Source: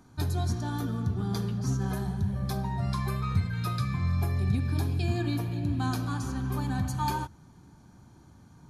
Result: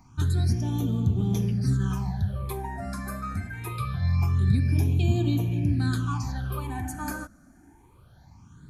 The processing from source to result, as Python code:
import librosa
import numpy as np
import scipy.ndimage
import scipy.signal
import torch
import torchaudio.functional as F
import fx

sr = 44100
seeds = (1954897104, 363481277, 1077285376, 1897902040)

y = fx.phaser_stages(x, sr, stages=8, low_hz=120.0, high_hz=1600.0, hz=0.24, feedback_pct=35)
y = F.gain(torch.from_numpy(y), 4.0).numpy()